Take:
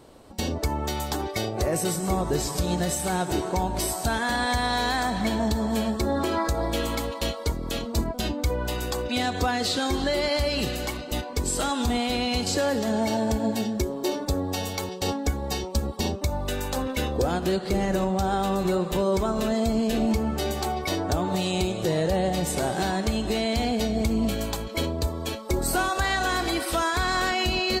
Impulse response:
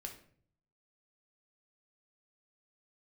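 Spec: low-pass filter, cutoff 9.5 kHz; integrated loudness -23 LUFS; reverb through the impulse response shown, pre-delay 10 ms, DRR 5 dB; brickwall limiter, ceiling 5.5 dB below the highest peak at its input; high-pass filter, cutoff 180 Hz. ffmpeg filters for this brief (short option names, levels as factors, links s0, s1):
-filter_complex "[0:a]highpass=180,lowpass=9500,alimiter=limit=0.119:level=0:latency=1,asplit=2[s0][s1];[1:a]atrim=start_sample=2205,adelay=10[s2];[s1][s2]afir=irnorm=-1:irlink=0,volume=0.841[s3];[s0][s3]amix=inputs=2:normalize=0,volume=1.78"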